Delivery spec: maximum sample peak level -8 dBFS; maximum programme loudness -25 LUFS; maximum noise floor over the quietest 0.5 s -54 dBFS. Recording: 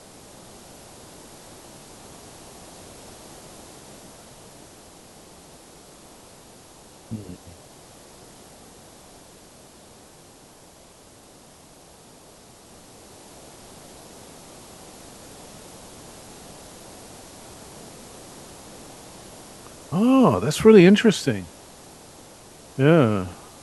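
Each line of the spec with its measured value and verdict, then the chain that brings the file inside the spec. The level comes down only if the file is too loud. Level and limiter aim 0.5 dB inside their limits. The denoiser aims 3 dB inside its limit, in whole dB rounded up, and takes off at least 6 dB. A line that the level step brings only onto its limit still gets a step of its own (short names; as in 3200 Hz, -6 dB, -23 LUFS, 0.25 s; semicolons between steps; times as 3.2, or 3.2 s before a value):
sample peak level -1.5 dBFS: fail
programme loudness -18.0 LUFS: fail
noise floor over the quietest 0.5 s -49 dBFS: fail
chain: gain -7.5 dB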